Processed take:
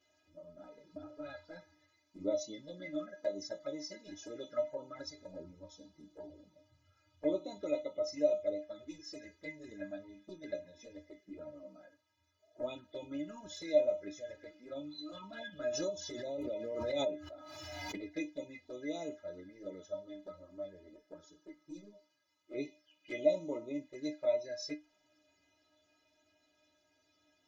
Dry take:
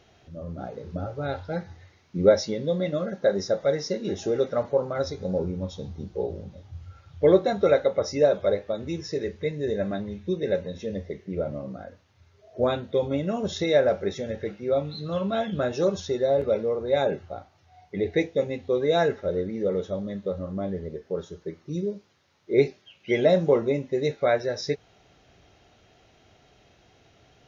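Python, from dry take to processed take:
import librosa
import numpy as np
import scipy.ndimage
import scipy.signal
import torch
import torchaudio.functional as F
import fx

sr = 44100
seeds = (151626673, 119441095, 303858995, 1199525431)

y = fx.highpass(x, sr, hz=84.0, slope=6)
y = fx.high_shelf(y, sr, hz=4700.0, db=6.5)
y = fx.env_flanger(y, sr, rest_ms=11.8, full_db=-20.5)
y = fx.stiff_resonator(y, sr, f0_hz=300.0, decay_s=0.21, stiffness=0.008)
y = fx.pre_swell(y, sr, db_per_s=23.0, at=(15.68, 17.97), fade=0.02)
y = y * librosa.db_to_amplitude(1.5)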